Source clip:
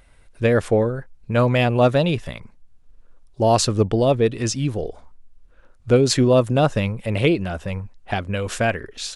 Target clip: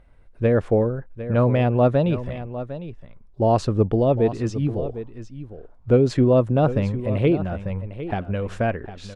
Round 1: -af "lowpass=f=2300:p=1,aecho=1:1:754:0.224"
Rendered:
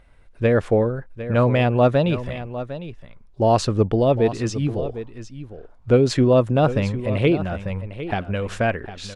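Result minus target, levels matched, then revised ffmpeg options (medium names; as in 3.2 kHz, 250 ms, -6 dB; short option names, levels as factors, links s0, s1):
2 kHz band +5.0 dB
-af "lowpass=f=820:p=1,aecho=1:1:754:0.224"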